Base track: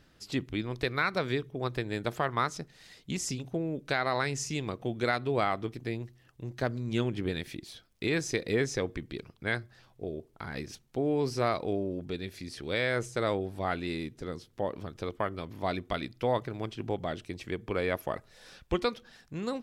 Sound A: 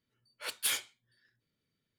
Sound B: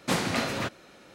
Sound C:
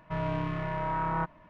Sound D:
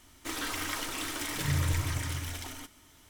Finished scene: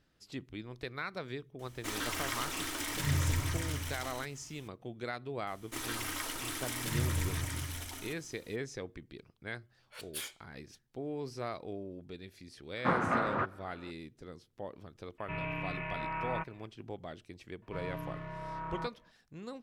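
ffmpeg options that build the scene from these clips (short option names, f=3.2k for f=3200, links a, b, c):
-filter_complex "[4:a]asplit=2[a][b];[3:a]asplit=2[c][d];[0:a]volume=-10.5dB[e];[b]equalizer=f=11k:t=o:w=0.55:g=4.5[f];[2:a]lowpass=f=1.3k:t=q:w=2.8[g];[c]lowpass=f=2.5k:t=q:w=11[h];[d]bandreject=f=790:w=16[i];[a]atrim=end=3.09,asetpts=PTS-STARTPTS,volume=-2dB,afade=t=in:d=0.004:c=hsin,afade=t=out:st=3.086:d=0.004:c=hsin,adelay=1590[j];[f]atrim=end=3.09,asetpts=PTS-STARTPTS,volume=-4dB,afade=t=in:d=0.004:c=hsin,afade=t=out:st=3.086:d=0.004:c=hsin,adelay=5470[k];[1:a]atrim=end=1.98,asetpts=PTS-STARTPTS,volume=-9.5dB,afade=t=in:d=0.004:c=hsin,afade=t=out:st=1.976:d=0.004:c=hsin,adelay=9510[l];[g]atrim=end=1.14,asetpts=PTS-STARTPTS,volume=-4.5dB,afade=t=in:d=0.004:c=hsin,afade=t=out:st=1.136:d=0.004:c=hsin,adelay=12770[m];[h]atrim=end=1.49,asetpts=PTS-STARTPTS,volume=-8.5dB,afade=t=in:d=0.004:c=hsin,afade=t=out:st=1.486:d=0.004:c=hsin,adelay=15180[n];[i]atrim=end=1.49,asetpts=PTS-STARTPTS,volume=-10dB,afade=t=in:d=0.004:c=hsin,afade=t=out:st=1.486:d=0.004:c=hsin,adelay=17620[o];[e][j][k][l][m][n][o]amix=inputs=7:normalize=0"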